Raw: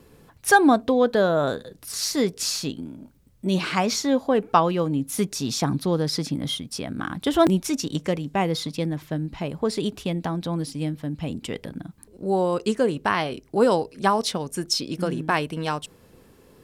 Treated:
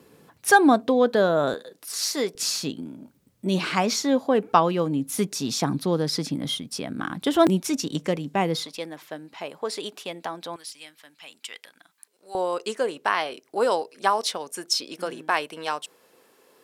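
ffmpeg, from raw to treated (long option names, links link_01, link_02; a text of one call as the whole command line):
ffmpeg -i in.wav -af "asetnsamples=nb_out_samples=441:pad=0,asendcmd='1.54 highpass f 380;2.35 highpass f 150;8.65 highpass f 540;10.56 highpass f 1500;12.35 highpass f 500',highpass=160" out.wav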